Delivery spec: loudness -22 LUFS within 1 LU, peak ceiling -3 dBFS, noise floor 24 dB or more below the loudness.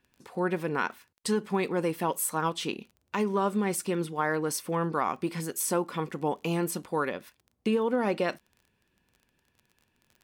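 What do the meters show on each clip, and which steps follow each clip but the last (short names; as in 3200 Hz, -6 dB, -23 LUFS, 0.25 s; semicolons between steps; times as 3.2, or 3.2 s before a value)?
ticks 23/s; loudness -30.0 LUFS; peak -15.5 dBFS; loudness target -22.0 LUFS
-> de-click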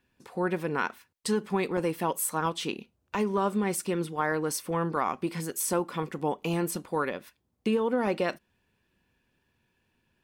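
ticks 0/s; loudness -30.0 LUFS; peak -15.0 dBFS; loudness target -22.0 LUFS
-> gain +8 dB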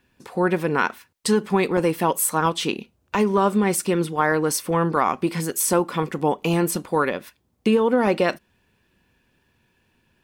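loudness -22.0 LUFS; peak -7.0 dBFS; noise floor -67 dBFS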